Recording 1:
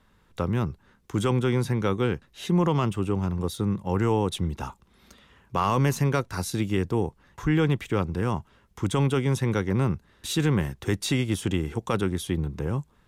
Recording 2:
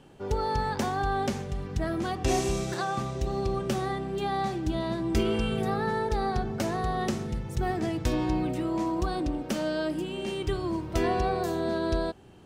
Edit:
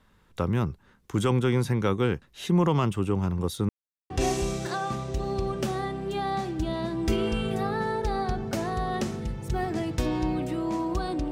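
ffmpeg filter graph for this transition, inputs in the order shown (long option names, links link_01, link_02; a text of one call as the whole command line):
ffmpeg -i cue0.wav -i cue1.wav -filter_complex "[0:a]apad=whole_dur=11.31,atrim=end=11.31,asplit=2[link_01][link_02];[link_01]atrim=end=3.69,asetpts=PTS-STARTPTS,afade=type=out:start_time=3.686:duration=0.004:curve=hsin[link_03];[link_02]atrim=start=3.69:end=4.1,asetpts=PTS-STARTPTS,volume=0[link_04];[1:a]atrim=start=2.17:end=9.38,asetpts=PTS-STARTPTS,afade=type=in:duration=0.004:curve=hsin[link_05];[link_03][link_04][link_05]concat=n=3:v=0:a=1" out.wav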